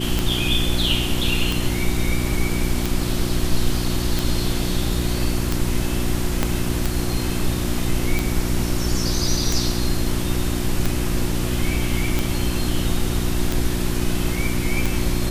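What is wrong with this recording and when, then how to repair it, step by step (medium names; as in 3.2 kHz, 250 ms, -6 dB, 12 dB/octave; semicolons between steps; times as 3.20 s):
hum 60 Hz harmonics 6 -25 dBFS
tick 45 rpm
6.43 s: pop -5 dBFS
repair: de-click; de-hum 60 Hz, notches 6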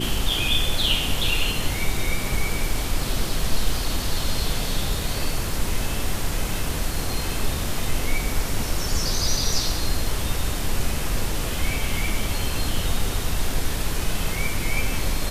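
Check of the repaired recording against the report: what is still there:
6.43 s: pop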